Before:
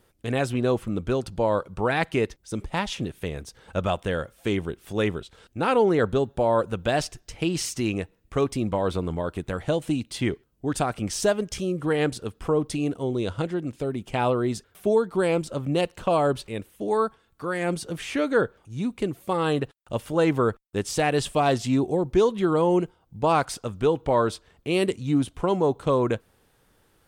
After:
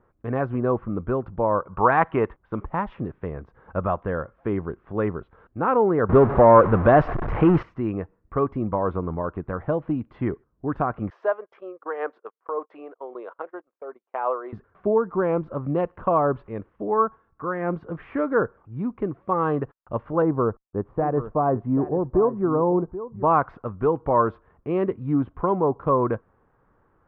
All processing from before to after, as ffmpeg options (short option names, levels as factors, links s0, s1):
-filter_complex "[0:a]asettb=1/sr,asplit=3[s0][s1][s2];[s0]atrim=end=1.674[s3];[s1]atrim=start=1.67:end=2.66,asetpts=PTS-STARTPTS,afade=t=in:d=0.004:c=qsin,afade=t=out:st=0.986:d=0.004:c=qsin,lowpass=f=3300:t=q:w=2.5,equalizer=f=1000:t=o:w=1.4:g=7.5[s4];[s2]atrim=start=2.656[s5];[s3][s4]acrossfade=d=0.004:c1=hsin:c2=qsin[s6];[s6][s5]acrossfade=d=0.004:c1=qsin:c2=hsin,asettb=1/sr,asplit=3[s7][s8][s9];[s7]atrim=end=6.094[s10];[s8]atrim=start=6.09:end=7.63,asetpts=PTS-STARTPTS,afade=t=in:d=0.004:c=qsin,afade=t=out:st=1.536:d=0.004:c=qsin,aeval=exprs='val(0)+0.5*0.0447*sgn(val(0))':c=same,acontrast=86[s11];[s9]atrim=start=7.626[s12];[s10][s11]acrossfade=d=0.004:c1=hsin:c2=qsin[s13];[s13][s12]acrossfade=d=0.004:c1=qsin:c2=hsin,asettb=1/sr,asplit=3[s14][s15][s16];[s14]atrim=end=11.104[s17];[s15]atrim=start=11.1:end=14.53,asetpts=PTS-STARTPTS,afade=t=in:d=0.004:c=qsin,afade=t=out:st=3.426:d=0.004:c=qsin,highpass=f=470:w=0.5412,highpass=f=470:w=1.3066,agate=range=0.0398:threshold=0.00891:ratio=16:release=100:detection=peak,tremolo=f=5.3:d=0.42[s18];[s16]atrim=start=14.526[s19];[s17][s18]acrossfade=d=0.004:c1=hsin:c2=qsin[s20];[s20][s19]acrossfade=d=0.004:c1=qsin:c2=hsin,asettb=1/sr,asplit=3[s21][s22][s23];[s21]atrim=end=20.224[s24];[s22]atrim=start=20.22:end=23.23,asetpts=PTS-STARTPTS,afade=t=in:d=0.004:c=qsin,afade=t=out:st=3.006:d=0.004:c=qsin,lowpass=1000,aecho=1:1:783:0.211,atrim=end_sample=132741[s25];[s23]atrim=start=23.226[s26];[s24][s25]acrossfade=d=0.004:c1=hsin:c2=qsin[s27];[s27][s26]acrossfade=d=0.004:c1=qsin:c2=hsin,lowpass=f=1600:w=0.5412,lowpass=f=1600:w=1.3066,equalizer=f=1100:w=3.6:g=7"